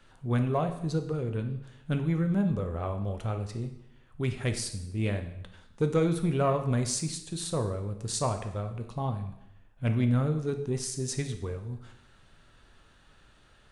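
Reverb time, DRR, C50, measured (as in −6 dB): 0.80 s, 6.0 dB, 9.5 dB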